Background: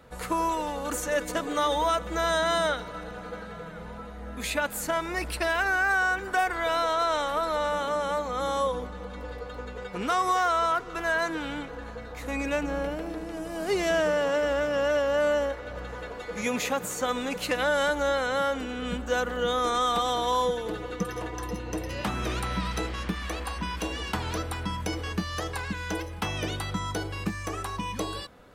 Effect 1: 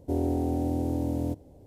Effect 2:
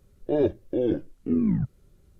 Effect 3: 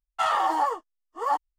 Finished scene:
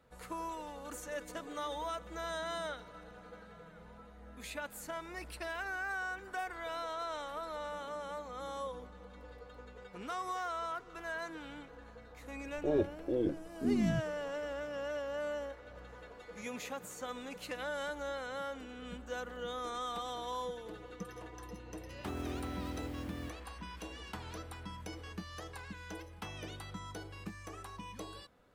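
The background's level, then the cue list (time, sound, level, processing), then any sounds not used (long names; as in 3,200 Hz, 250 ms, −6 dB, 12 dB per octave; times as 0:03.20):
background −14 dB
0:12.35: mix in 2 −8 dB
0:21.96: mix in 1 −14 dB + one scale factor per block 5 bits
not used: 3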